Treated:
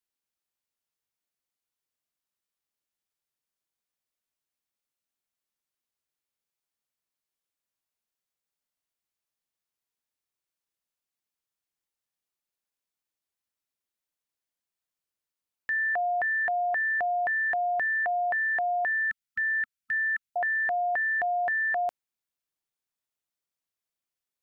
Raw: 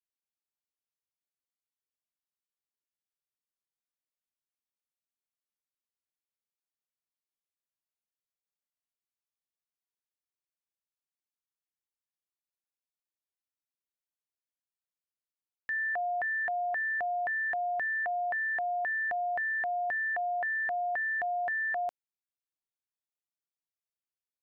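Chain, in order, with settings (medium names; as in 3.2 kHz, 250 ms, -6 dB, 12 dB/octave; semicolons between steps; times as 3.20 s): 19.01–20.36 s: brick-wall FIR band-stop 240–1300 Hz; trim +4.5 dB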